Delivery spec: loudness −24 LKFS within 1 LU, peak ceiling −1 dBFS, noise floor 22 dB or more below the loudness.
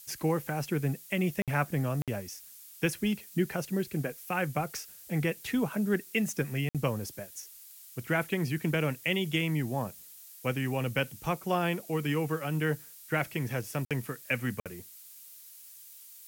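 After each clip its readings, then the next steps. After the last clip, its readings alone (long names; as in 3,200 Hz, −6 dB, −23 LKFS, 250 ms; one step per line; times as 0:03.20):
number of dropouts 5; longest dropout 57 ms; background noise floor −51 dBFS; target noise floor −54 dBFS; integrated loudness −32.0 LKFS; sample peak −16.5 dBFS; target loudness −24.0 LKFS
→ repair the gap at 0:01.42/0:02.02/0:06.69/0:13.85/0:14.60, 57 ms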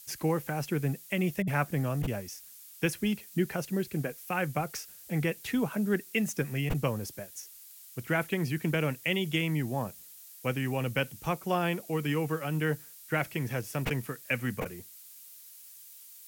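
number of dropouts 0; background noise floor −51 dBFS; target noise floor −54 dBFS
→ noise reduction from a noise print 6 dB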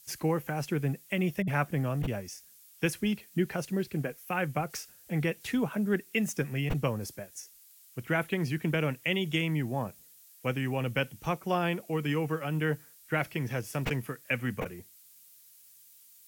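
background noise floor −57 dBFS; integrated loudness −32.0 LKFS; sample peak −16.5 dBFS; target loudness −24.0 LKFS
→ level +8 dB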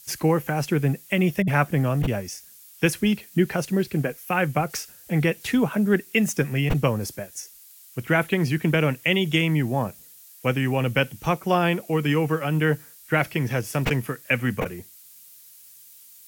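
integrated loudness −24.0 LKFS; sample peak −8.5 dBFS; background noise floor −49 dBFS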